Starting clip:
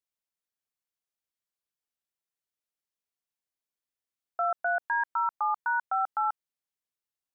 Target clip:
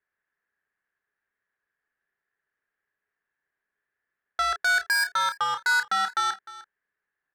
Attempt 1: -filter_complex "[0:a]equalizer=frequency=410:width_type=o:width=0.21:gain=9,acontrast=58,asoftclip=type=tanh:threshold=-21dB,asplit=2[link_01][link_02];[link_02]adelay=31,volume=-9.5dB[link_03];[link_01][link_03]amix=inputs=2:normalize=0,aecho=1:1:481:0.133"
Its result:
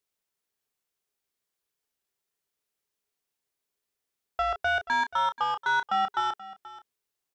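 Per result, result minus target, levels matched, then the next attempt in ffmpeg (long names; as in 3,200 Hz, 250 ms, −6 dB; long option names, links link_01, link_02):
echo 177 ms late; 2,000 Hz band −2.5 dB
-filter_complex "[0:a]equalizer=frequency=410:width_type=o:width=0.21:gain=9,acontrast=58,asoftclip=type=tanh:threshold=-21dB,asplit=2[link_01][link_02];[link_02]adelay=31,volume=-9.5dB[link_03];[link_01][link_03]amix=inputs=2:normalize=0,aecho=1:1:304:0.133"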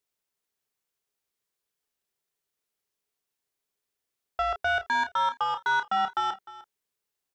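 2,000 Hz band −2.5 dB
-filter_complex "[0:a]lowpass=frequency=1700:width_type=q:width=8.7,equalizer=frequency=410:width_type=o:width=0.21:gain=9,acontrast=58,asoftclip=type=tanh:threshold=-21dB,asplit=2[link_01][link_02];[link_02]adelay=31,volume=-9.5dB[link_03];[link_01][link_03]amix=inputs=2:normalize=0,aecho=1:1:304:0.133"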